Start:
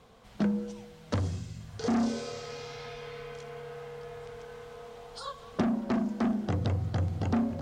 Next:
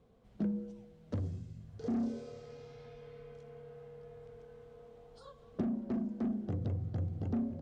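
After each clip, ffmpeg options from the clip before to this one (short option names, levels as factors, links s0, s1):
-af "firequalizer=gain_entry='entry(370,0);entry(910,-11);entry(4800,-14)':delay=0.05:min_phase=1,volume=0.501"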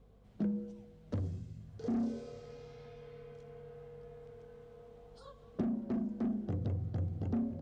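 -af "aeval=exprs='val(0)+0.000794*(sin(2*PI*50*n/s)+sin(2*PI*2*50*n/s)/2+sin(2*PI*3*50*n/s)/3+sin(2*PI*4*50*n/s)/4+sin(2*PI*5*50*n/s)/5)':c=same"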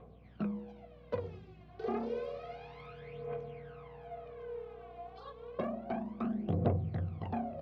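-af "highpass=f=120:w=0.5412,highpass=f=120:w=1.3066,equalizer=f=120:t=q:w=4:g=-9,equalizer=f=190:t=q:w=4:g=-6,equalizer=f=280:t=q:w=4:g=-10,equalizer=f=700:t=q:w=4:g=7,equalizer=f=1100:t=q:w=4:g=6,equalizer=f=2400:t=q:w=4:g=6,lowpass=f=3800:w=0.5412,lowpass=f=3800:w=1.3066,aphaser=in_gain=1:out_gain=1:delay=2.9:decay=0.72:speed=0.3:type=triangular,aeval=exprs='val(0)+0.000891*(sin(2*PI*60*n/s)+sin(2*PI*2*60*n/s)/2+sin(2*PI*3*60*n/s)/3+sin(2*PI*4*60*n/s)/4+sin(2*PI*5*60*n/s)/5)':c=same,volume=1.41"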